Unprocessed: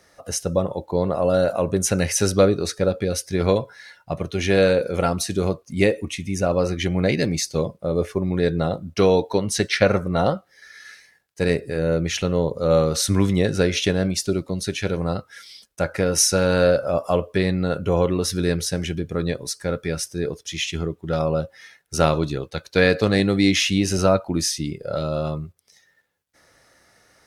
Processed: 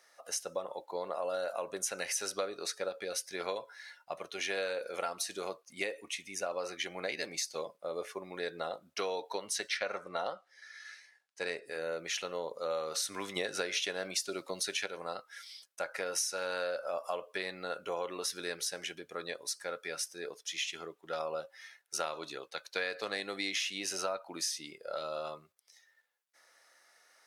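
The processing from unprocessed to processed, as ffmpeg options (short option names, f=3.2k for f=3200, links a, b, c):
-filter_complex "[0:a]asettb=1/sr,asplit=3[a][b][c];[a]atrim=end=9.774[d];[b]atrim=start=9.77:end=11.66,asetpts=PTS-STARTPTS,afade=t=in:d=0.004:c=qsin,afade=t=out:st=1.886:d=0.004:c=qsin,lowpass=8.3k[e];[c]atrim=start=11.656[f];[d][e]acrossfade=d=0.004:c1=hsin:c2=qsin[g];[g][f]acrossfade=d=0.004:c1=qsin:c2=hsin,asplit=3[h][i][j];[h]atrim=end=13.362[k];[i]atrim=start=13.358:end=14.862,asetpts=PTS-STARTPTS,volume=7dB[l];[j]atrim=start=14.858[m];[k][l]acrossfade=d=0.004:c1=hsin:c2=hsin[n];[n][m]acrossfade=d=0.004:c1=hsin:c2=hsin,highpass=700,acompressor=threshold=-25dB:ratio=5,volume=-6.5dB"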